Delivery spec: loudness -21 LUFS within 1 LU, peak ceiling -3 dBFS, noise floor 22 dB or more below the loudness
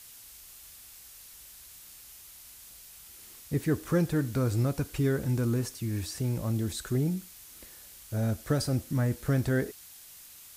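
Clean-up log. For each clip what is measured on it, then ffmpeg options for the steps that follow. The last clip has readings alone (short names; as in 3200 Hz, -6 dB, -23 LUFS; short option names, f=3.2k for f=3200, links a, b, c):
noise floor -50 dBFS; noise floor target -52 dBFS; loudness -30.0 LUFS; peak -15.5 dBFS; loudness target -21.0 LUFS
-> -af "afftdn=nr=6:nf=-50"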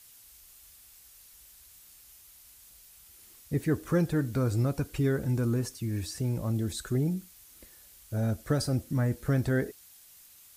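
noise floor -55 dBFS; loudness -30.0 LUFS; peak -16.0 dBFS; loudness target -21.0 LUFS
-> -af "volume=9dB"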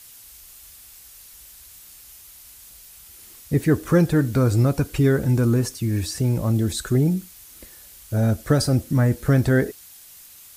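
loudness -21.0 LUFS; peak -7.0 dBFS; noise floor -46 dBFS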